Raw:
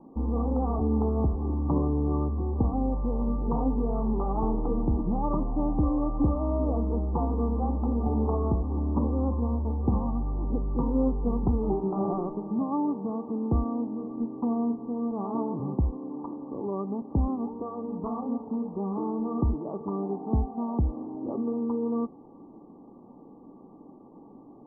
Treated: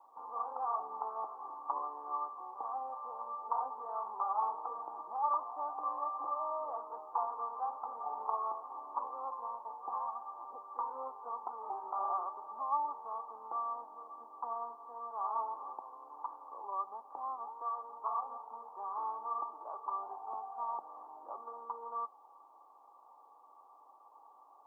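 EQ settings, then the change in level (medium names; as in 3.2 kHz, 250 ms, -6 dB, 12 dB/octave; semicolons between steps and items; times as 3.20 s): high-pass 980 Hz 24 dB/octave; +6.0 dB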